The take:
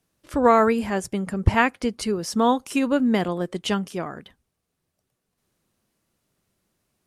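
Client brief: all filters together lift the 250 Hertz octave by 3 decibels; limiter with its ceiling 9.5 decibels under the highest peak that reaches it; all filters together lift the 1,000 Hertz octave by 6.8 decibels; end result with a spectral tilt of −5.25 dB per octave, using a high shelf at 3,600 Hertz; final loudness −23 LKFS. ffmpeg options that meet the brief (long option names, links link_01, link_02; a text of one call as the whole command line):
ffmpeg -i in.wav -af "equalizer=frequency=250:width_type=o:gain=3,equalizer=frequency=1000:width_type=o:gain=8.5,highshelf=frequency=3600:gain=-3.5,volume=-1.5dB,alimiter=limit=-10.5dB:level=0:latency=1" out.wav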